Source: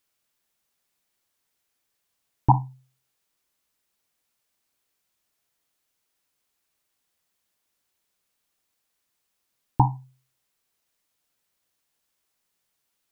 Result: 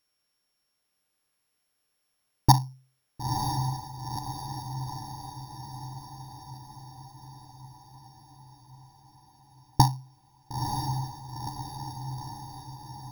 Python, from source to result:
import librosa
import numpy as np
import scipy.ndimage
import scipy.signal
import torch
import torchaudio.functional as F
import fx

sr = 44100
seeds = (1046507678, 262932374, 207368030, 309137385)

y = np.r_[np.sort(x[:len(x) // 8 * 8].reshape(-1, 8), axis=1).ravel(), x[len(x) // 8 * 8:]]
y = fx.echo_diffused(y, sr, ms=962, feedback_pct=61, wet_db=-5)